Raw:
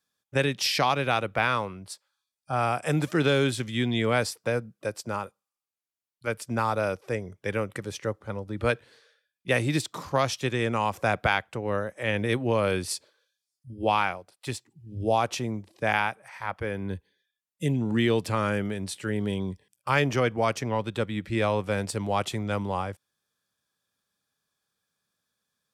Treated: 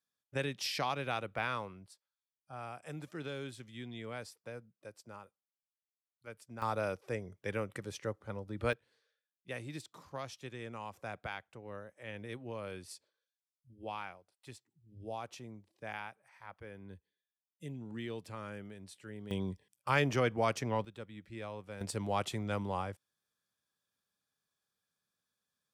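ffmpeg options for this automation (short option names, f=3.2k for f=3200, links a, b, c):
-af "asetnsamples=n=441:p=0,asendcmd='1.86 volume volume -19dB;6.62 volume volume -8dB;8.73 volume volume -18dB;19.31 volume volume -6dB;20.85 volume volume -18.5dB;21.81 volume volume -7dB',volume=-11dB"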